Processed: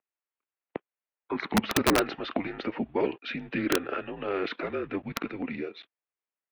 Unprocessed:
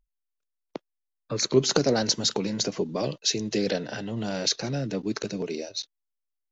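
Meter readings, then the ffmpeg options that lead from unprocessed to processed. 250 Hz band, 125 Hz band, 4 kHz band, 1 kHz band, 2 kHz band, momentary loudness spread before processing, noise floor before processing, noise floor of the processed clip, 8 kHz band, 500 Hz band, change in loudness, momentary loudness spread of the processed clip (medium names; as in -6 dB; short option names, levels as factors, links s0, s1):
-1.5 dB, -8.0 dB, -9.0 dB, +4.0 dB, +4.0 dB, 12 LU, -83 dBFS, under -85 dBFS, no reading, -3.5 dB, -3.5 dB, 14 LU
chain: -af "highpass=f=500:t=q:w=0.5412,highpass=f=500:t=q:w=1.307,lowpass=f=2800:t=q:w=0.5176,lowpass=f=2800:t=q:w=0.7071,lowpass=f=2800:t=q:w=1.932,afreqshift=-180,aeval=exprs='(mod(9.44*val(0)+1,2)-1)/9.44':c=same,volume=1.78"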